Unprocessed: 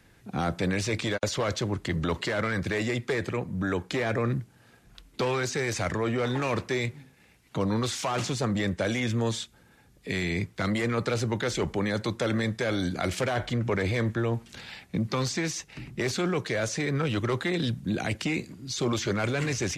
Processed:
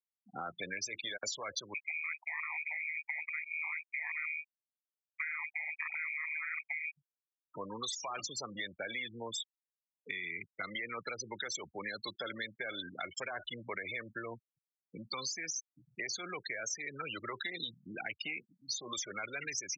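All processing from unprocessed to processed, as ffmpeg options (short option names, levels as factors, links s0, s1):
-filter_complex "[0:a]asettb=1/sr,asplit=3[s0][s1][s2];[s0]atrim=end=1.744[s3];[s1]atrim=start=1.74:end=6.97,asetpts=PTS-STARTPTS,afade=t=in:d=0.004:c=qsin,afade=t=out:st=5.226:d=0.004:c=qsin,lowpass=f=2100:t=q:w=0.5098,lowpass=f=2100:t=q:w=0.6013,lowpass=f=2100:t=q:w=0.9,lowpass=f=2100:t=q:w=2.563,afreqshift=-2500,lowshelf=f=630:t=q:w=1.5:g=-9,aeval=exprs='val(0)*sin(2*PI*78*n/s)':c=same[s4];[s2]atrim=start=6.966[s5];[s3][s4]acrossfade=d=0.004:c1=hsin:c2=qsin[s6];[s6][s5]acrossfade=d=0.004:c1=qsin:c2=hsin,afftfilt=real='re*gte(hypot(re,im),0.0501)':imag='im*gte(hypot(re,im),0.0501)':win_size=1024:overlap=0.75,aderivative,acompressor=threshold=0.00447:ratio=6,volume=3.55"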